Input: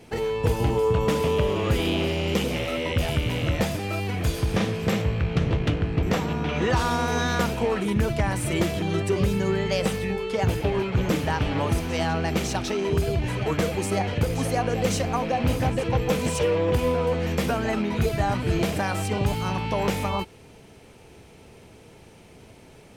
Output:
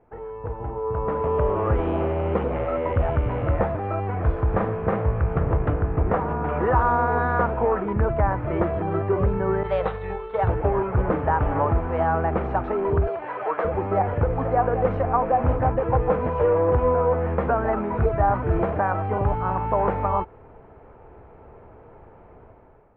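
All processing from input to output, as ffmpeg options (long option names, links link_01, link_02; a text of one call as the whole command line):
ffmpeg -i in.wav -filter_complex "[0:a]asettb=1/sr,asplit=3[link_01][link_02][link_03];[link_01]atrim=end=9.634[link_04];[link_02]atrim=start=9.63:end=10.49,asetpts=PTS-STARTPTS,afade=type=in:duration=0.004:curve=qsin,afade=type=out:start_time=0.856:duration=0.004:curve=qsin,agate=range=-33dB:threshold=-25dB:ratio=3:release=100:detection=peak,lowpass=frequency=3800:width_type=q:width=9,equalizer=frequency=250:width_type=o:width=0.7:gain=-14[link_05];[link_03]atrim=start=10.486[link_06];[link_04][link_05]acrossfade=duration=0.004:curve1=hsin:curve2=qsin[link_07];[link_07][link_06]acrossfade=duration=0.004:curve1=qsin:curve2=hsin,asettb=1/sr,asplit=3[link_08][link_09][link_10];[link_08]atrim=end=13.074[link_11];[link_09]atrim=start=13.07:end=13.65,asetpts=PTS-STARTPTS,afade=type=in:duration=0.004:curve=qsin,afade=type=out:start_time=0.576:duration=0.004:curve=qsin,highpass=520,highshelf=frequency=4600:gain=11.5[link_12];[link_10]atrim=start=13.646[link_13];[link_11][link_12]acrossfade=duration=0.004:curve1=hsin:curve2=qsin[link_14];[link_14][link_13]acrossfade=duration=0.004:curve1=qsin:curve2=hsin,lowpass=frequency=1300:width=0.5412,lowpass=frequency=1300:width=1.3066,equalizer=frequency=190:width=0.54:gain=-13,dynaudnorm=framelen=770:gausssize=3:maxgain=13dB,volume=-3.5dB" out.wav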